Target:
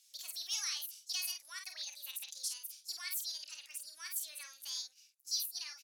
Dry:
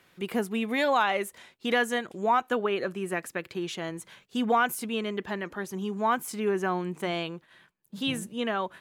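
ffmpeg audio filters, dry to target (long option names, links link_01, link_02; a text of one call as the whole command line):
ffmpeg -i in.wav -filter_complex "[0:a]asuperpass=centerf=5800:order=4:qfactor=1.2,aecho=1:1:46|75:0.266|0.473,asetrate=66591,aresample=44100,asplit=2[link_01][link_02];[link_02]asoftclip=type=tanh:threshold=-34dB,volume=-5.5dB[link_03];[link_01][link_03]amix=inputs=2:normalize=0,volume=1.5dB" out.wav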